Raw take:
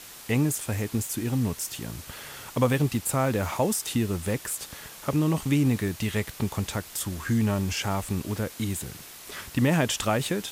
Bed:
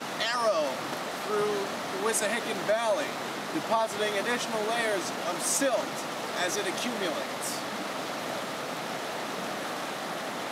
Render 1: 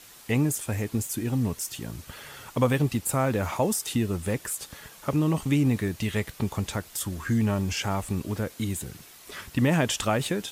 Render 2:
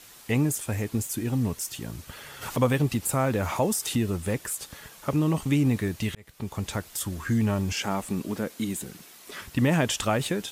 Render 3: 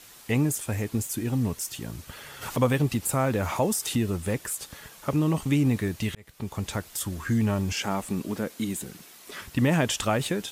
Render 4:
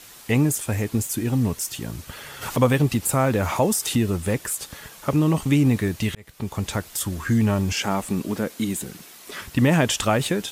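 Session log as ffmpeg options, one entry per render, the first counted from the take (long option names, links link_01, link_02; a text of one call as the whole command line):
ffmpeg -i in.wav -af "afftdn=noise_reduction=6:noise_floor=-45" out.wav
ffmpeg -i in.wav -filter_complex "[0:a]asplit=3[link_01][link_02][link_03];[link_01]afade=type=out:start_time=2.41:duration=0.02[link_04];[link_02]acompressor=mode=upward:threshold=-24dB:ratio=2.5:attack=3.2:release=140:knee=2.83:detection=peak,afade=type=in:start_time=2.41:duration=0.02,afade=type=out:start_time=4.1:duration=0.02[link_05];[link_03]afade=type=in:start_time=4.1:duration=0.02[link_06];[link_04][link_05][link_06]amix=inputs=3:normalize=0,asettb=1/sr,asplit=3[link_07][link_08][link_09];[link_07]atrim=end=7.724[link_10];[link_08]atrim=start=7.72:end=9.42,asetpts=PTS-STARTPTS,afade=type=in:duration=0.004:curve=qsin,afade=type=out:start_time=1.696:duration=0.004:curve=qsin,lowshelf=frequency=140:width_type=q:width=1.5:gain=-8.5[link_11];[link_09]atrim=start=9.416[link_12];[link_10][link_11]acrossfade=duration=0.004:curve1=hsin:curve2=qsin[link_13];[link_13][link_12]acrossfade=duration=0.004:curve1=qsin:curve2=hsin,asplit=2[link_14][link_15];[link_14]atrim=end=6.15,asetpts=PTS-STARTPTS,afade=type=out:start_time=6.146:duration=0.004:curve=hsin[link_16];[link_15]atrim=start=6.15,asetpts=PTS-STARTPTS,afade=type=in:duration=0.58[link_17];[link_16][link_17]concat=n=2:v=0:a=1" out.wav
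ffmpeg -i in.wav -af anull out.wav
ffmpeg -i in.wav -af "volume=4.5dB" out.wav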